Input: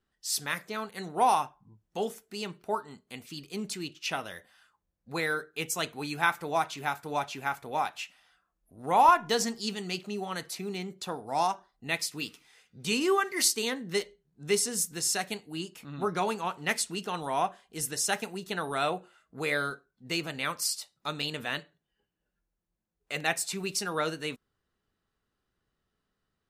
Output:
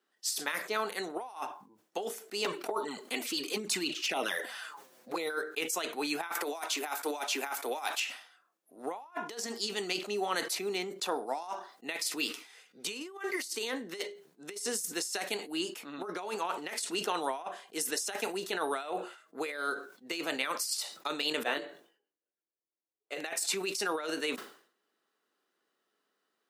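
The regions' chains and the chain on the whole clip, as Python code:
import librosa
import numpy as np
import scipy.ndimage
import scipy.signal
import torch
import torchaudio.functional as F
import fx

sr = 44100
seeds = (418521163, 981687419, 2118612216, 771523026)

y = fx.chain(x, sr, fx.env_flanger(rest_ms=8.3, full_db=-29.0),
    fx.env_flatten(amount_pct=50), at=(2.44, 5.3))
y = fx.chain(y, sr, fx.highpass(hz=220.0, slope=24),
    fx.high_shelf(hz=4500.0, db=9.5),
    fx.band_squash(depth_pct=70), at=(6.35, 8.0))
y = fx.chain(y, sr, fx.peak_eq(hz=430.0, db=8.5, octaves=2.1),
    fx.doubler(ms=21.0, db=-6.5),
    fx.upward_expand(threshold_db=-40.0, expansion=2.5), at=(21.43, 23.18))
y = fx.over_compress(y, sr, threshold_db=-33.0, ratio=-0.5)
y = scipy.signal.sosfilt(scipy.signal.butter(4, 290.0, 'highpass', fs=sr, output='sos'), y)
y = fx.sustainer(y, sr, db_per_s=110.0)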